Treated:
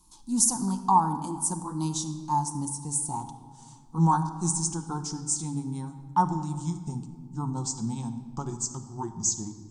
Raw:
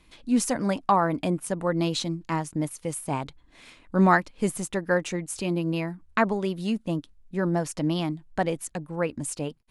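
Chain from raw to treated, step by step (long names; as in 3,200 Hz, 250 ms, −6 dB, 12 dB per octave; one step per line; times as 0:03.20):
pitch glide at a constant tempo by −6 semitones starting unshifted
drawn EQ curve 310 Hz 0 dB, 600 Hz −21 dB, 880 Hz +12 dB, 2,000 Hz −25 dB, 6,200 Hz +14 dB
rectangular room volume 2,500 cubic metres, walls mixed, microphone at 0.93 metres
level −4.5 dB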